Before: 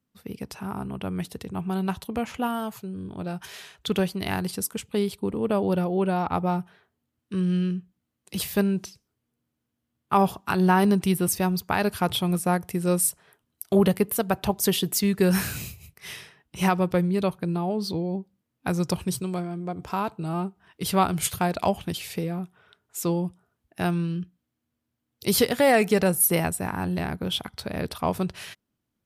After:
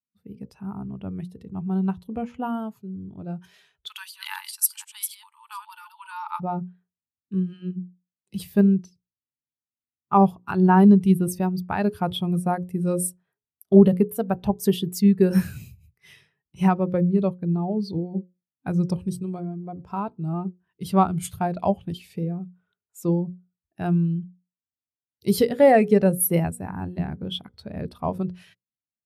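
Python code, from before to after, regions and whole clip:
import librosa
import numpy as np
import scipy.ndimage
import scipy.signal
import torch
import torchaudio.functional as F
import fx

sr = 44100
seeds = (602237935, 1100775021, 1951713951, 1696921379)

y = fx.chain(x, sr, fx.reverse_delay(ms=244, wet_db=-5.5),
    fx.brickwall_highpass(low_hz=830.0),
    fx.high_shelf(hz=3300.0, db=11.5), at=(3.87, 6.4))
y = fx.low_shelf(y, sr, hz=270.0, db=3.5)
y = fx.hum_notches(y, sr, base_hz=60, count=9)
y = fx.spectral_expand(y, sr, expansion=1.5)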